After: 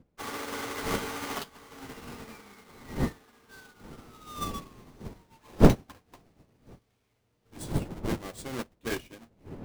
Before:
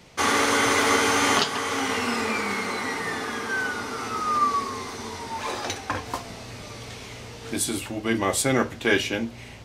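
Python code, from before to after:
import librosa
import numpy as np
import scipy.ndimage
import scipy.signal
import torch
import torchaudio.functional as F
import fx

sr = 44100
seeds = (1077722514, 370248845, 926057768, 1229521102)

y = fx.halfwave_hold(x, sr)
y = fx.dmg_wind(y, sr, seeds[0], corner_hz=300.0, level_db=-22.0)
y = fx.upward_expand(y, sr, threshold_db=-30.0, expansion=2.5)
y = y * librosa.db_to_amplitude(-3.5)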